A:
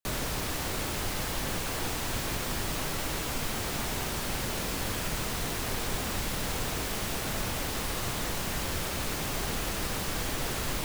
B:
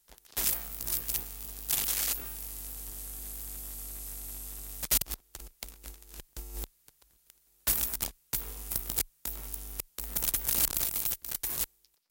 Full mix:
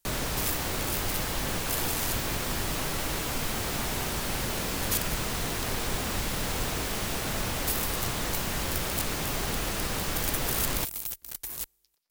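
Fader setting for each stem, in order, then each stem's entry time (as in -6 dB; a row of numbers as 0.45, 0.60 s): +1.5, -3.5 dB; 0.00, 0.00 s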